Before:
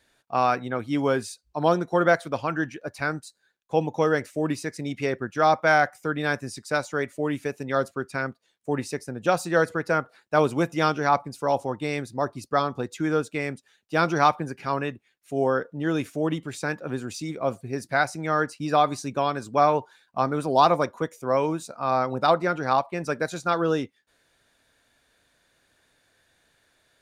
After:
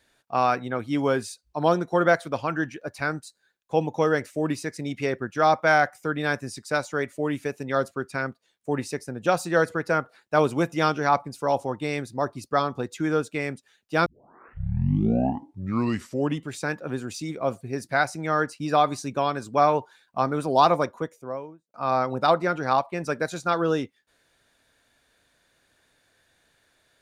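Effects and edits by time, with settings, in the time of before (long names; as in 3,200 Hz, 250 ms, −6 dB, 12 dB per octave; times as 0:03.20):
0:14.06: tape start 2.41 s
0:20.73–0:21.74: fade out and dull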